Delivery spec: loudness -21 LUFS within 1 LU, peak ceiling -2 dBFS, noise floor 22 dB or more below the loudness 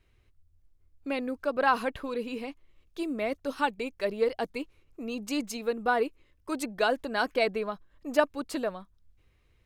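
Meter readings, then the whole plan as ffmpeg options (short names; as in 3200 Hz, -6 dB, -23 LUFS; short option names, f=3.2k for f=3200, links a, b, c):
loudness -30.5 LUFS; peak -8.0 dBFS; loudness target -21.0 LUFS
-> -af "volume=9.5dB,alimiter=limit=-2dB:level=0:latency=1"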